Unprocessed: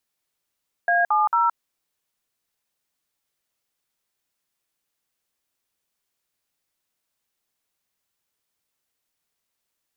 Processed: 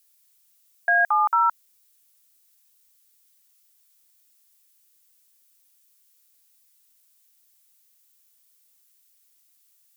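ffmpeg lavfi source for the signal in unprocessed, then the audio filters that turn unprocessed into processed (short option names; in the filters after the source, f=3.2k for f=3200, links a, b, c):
-f lavfi -i "aevalsrc='0.112*clip(min(mod(t,0.224),0.17-mod(t,0.224))/0.002,0,1)*(eq(floor(t/0.224),0)*(sin(2*PI*697*mod(t,0.224))+sin(2*PI*1633*mod(t,0.224)))+eq(floor(t/0.224),1)*(sin(2*PI*852*mod(t,0.224))+sin(2*PI*1209*mod(t,0.224)))+eq(floor(t/0.224),2)*(sin(2*PI*941*mod(t,0.224))+sin(2*PI*1336*mod(t,0.224))))':d=0.672:s=44100"
-af "lowshelf=f=480:g=-12,crystalizer=i=4.5:c=0"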